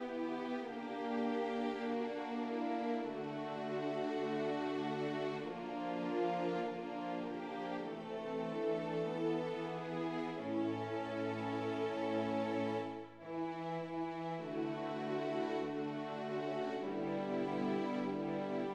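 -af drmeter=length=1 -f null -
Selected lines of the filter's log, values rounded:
Channel 1: DR: 9.8
Overall DR: 9.8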